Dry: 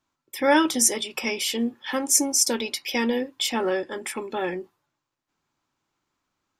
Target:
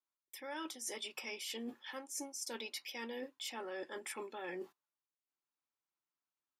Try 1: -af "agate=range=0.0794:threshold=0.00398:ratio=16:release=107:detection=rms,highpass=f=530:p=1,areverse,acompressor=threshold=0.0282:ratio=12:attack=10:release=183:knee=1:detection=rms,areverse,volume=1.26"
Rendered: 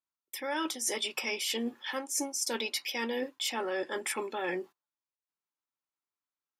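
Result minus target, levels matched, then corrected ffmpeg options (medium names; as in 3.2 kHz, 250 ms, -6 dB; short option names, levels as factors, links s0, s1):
compression: peak gain reduction -10.5 dB
-af "agate=range=0.0794:threshold=0.00398:ratio=16:release=107:detection=rms,highpass=f=530:p=1,areverse,acompressor=threshold=0.0075:ratio=12:attack=10:release=183:knee=1:detection=rms,areverse,volume=1.26"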